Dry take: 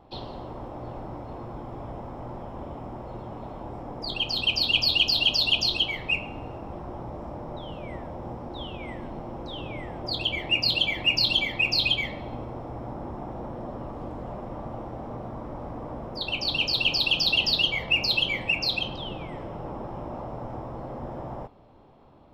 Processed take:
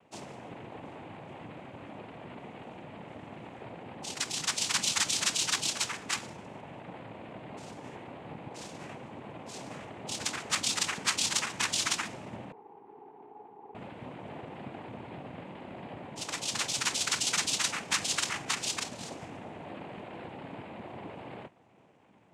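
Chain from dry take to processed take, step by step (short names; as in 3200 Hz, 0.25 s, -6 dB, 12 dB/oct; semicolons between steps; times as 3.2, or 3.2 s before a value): noise vocoder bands 4; 12.52–13.75 double band-pass 590 Hz, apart 0.97 oct; gain -6.5 dB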